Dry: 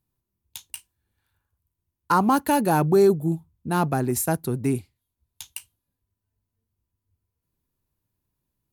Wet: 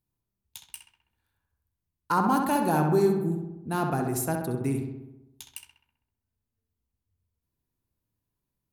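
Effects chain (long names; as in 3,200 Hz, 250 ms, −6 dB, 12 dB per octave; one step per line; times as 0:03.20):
feedback echo with a low-pass in the loop 65 ms, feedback 65%, low-pass 2,800 Hz, level −4 dB
level −5.5 dB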